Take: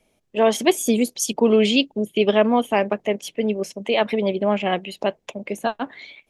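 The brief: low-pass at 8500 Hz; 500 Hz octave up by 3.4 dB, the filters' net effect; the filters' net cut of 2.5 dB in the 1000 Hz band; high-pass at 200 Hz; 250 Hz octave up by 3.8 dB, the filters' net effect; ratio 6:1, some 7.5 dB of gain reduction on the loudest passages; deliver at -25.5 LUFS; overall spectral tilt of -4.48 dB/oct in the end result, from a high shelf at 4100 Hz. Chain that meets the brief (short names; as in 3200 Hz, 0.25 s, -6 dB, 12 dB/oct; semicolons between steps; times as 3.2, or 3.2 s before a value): HPF 200 Hz; LPF 8500 Hz; bell 250 Hz +6 dB; bell 500 Hz +4.5 dB; bell 1000 Hz -7 dB; high shelf 4100 Hz -3.5 dB; compressor 6:1, threshold -16 dBFS; gain -2.5 dB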